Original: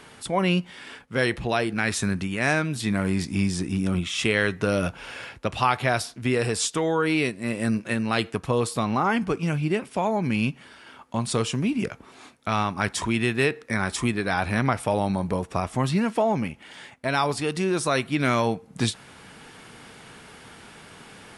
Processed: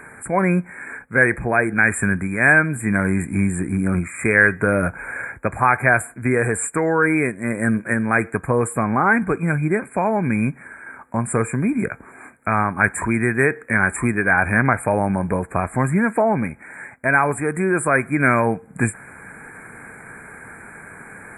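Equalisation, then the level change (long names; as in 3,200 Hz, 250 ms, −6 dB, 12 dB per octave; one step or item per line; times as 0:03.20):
linear-phase brick-wall band-stop 2,500–7,100 Hz
parametric band 1,600 Hz +11 dB 0.26 octaves
+4.5 dB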